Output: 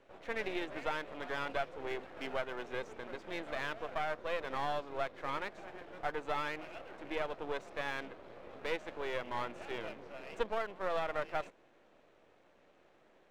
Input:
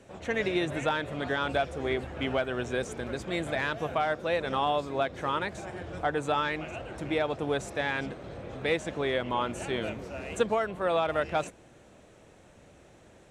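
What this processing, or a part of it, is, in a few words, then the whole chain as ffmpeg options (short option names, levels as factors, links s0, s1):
crystal radio: -af "highpass=310,lowpass=3300,aeval=exprs='if(lt(val(0),0),0.251*val(0),val(0))':c=same,volume=0.596"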